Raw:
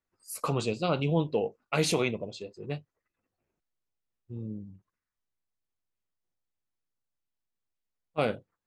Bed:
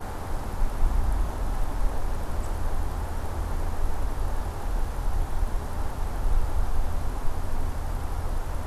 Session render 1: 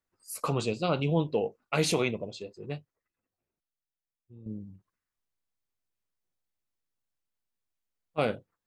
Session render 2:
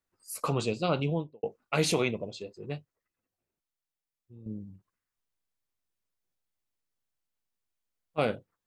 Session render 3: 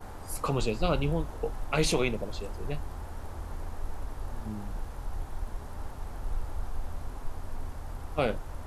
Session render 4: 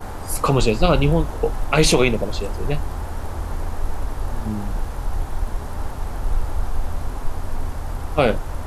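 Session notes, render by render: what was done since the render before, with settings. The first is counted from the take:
2.47–4.46 s: fade out quadratic, to -11.5 dB
0.96–1.43 s: studio fade out
add bed -9 dB
trim +11.5 dB; peak limiter -3 dBFS, peak gain reduction 2 dB

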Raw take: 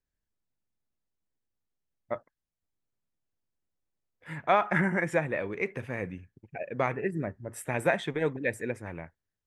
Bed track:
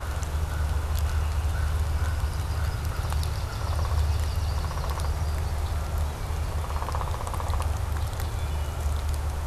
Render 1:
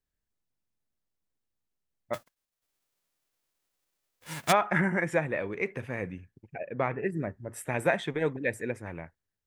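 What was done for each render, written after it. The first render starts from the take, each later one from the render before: 2.13–4.51 s: formants flattened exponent 0.3; 6.57–7.03 s: distance through air 220 m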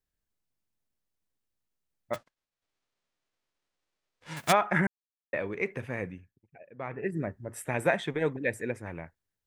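2.16–4.37 s: distance through air 93 m; 4.87–5.33 s: mute; 6.00–7.14 s: dip -14 dB, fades 0.38 s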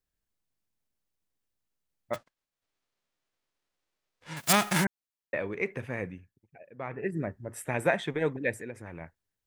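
4.40–4.83 s: formants flattened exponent 0.3; 8.57–9.01 s: compression 2.5:1, threshold -38 dBFS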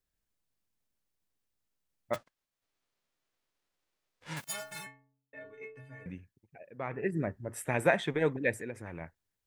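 4.44–6.06 s: inharmonic resonator 130 Hz, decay 0.78 s, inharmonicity 0.03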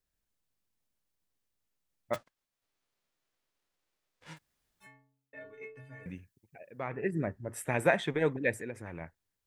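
4.31–4.88 s: room tone, crossfade 0.16 s; 6.03–6.84 s: treble shelf 4.4 kHz +8.5 dB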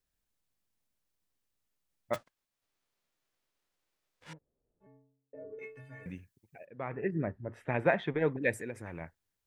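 4.33–5.59 s: resonant low-pass 480 Hz, resonance Q 2.9; 6.65–8.42 s: distance through air 280 m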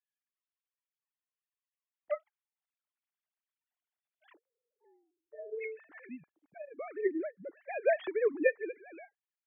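formants replaced by sine waves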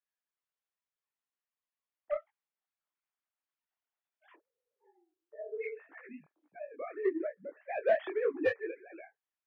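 overdrive pedal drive 14 dB, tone 1.3 kHz, clips at -13 dBFS; detune thickener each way 58 cents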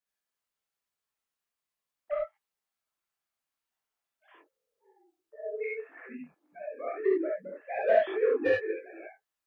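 gated-style reverb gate 90 ms rising, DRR -2.5 dB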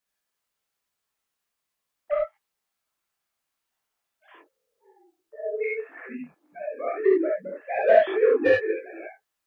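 trim +6.5 dB

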